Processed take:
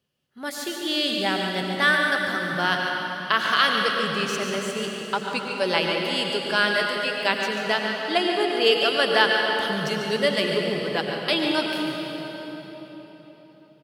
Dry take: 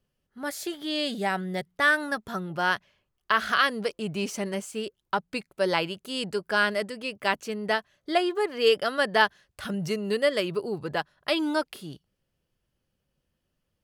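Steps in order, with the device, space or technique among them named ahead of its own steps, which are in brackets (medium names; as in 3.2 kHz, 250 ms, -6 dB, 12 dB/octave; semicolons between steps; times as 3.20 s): PA in a hall (high-pass 100 Hz; peaking EQ 3.5 kHz +6.5 dB 1.2 oct; delay 143 ms -8.5 dB; reverberation RT60 4.3 s, pre-delay 85 ms, DRR 1.5 dB)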